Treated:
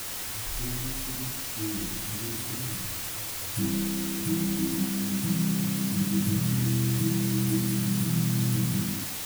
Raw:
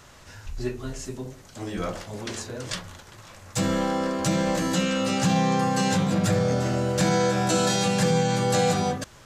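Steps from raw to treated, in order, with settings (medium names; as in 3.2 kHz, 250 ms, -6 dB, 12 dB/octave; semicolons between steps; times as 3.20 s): Chebyshev band-stop 330–9700 Hz, order 5; bass shelf 490 Hz -6.5 dB; hum notches 60/120/180/240/300 Hz; in parallel at +2 dB: compression, threshold -44 dBFS, peak gain reduction 17.5 dB; on the sum: word length cut 6-bit, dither triangular; on a send at -5 dB: reverberation RT60 0.70 s, pre-delay 5 ms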